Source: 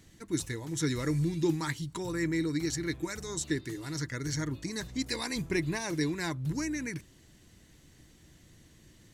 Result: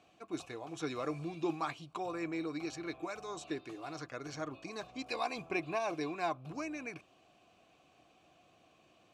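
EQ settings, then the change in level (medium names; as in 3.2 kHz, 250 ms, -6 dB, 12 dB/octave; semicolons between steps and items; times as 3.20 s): vowel filter a; +13.0 dB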